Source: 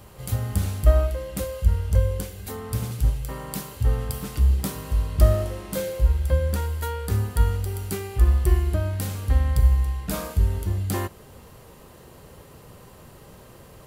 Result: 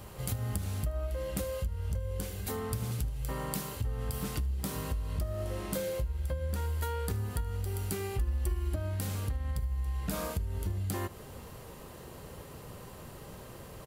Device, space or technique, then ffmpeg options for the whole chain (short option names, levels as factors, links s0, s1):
serial compression, peaks first: -filter_complex "[0:a]acompressor=threshold=0.0501:ratio=4,acompressor=threshold=0.0282:ratio=3,asettb=1/sr,asplit=3[s0][s1][s2];[s0]atrim=end=8.194[s3];[s1]atrim=start=8.19:end=8.76,asetpts=PTS-STARTPTS,afade=t=in:d=0.004:c=qsin,afade=t=out:st=0.566:d=0.004:c=qsin,aecho=1:1:3.6:0.73,atrim=end_sample=25137[s4];[s2]atrim=start=8.756[s5];[s3][s4]acrossfade=d=0.004:c1=hsin:c2=qsin[s6];[s6][s5]acrossfade=d=0.004:c1=qsin:c2=hsin,aecho=1:1:77:0.0708"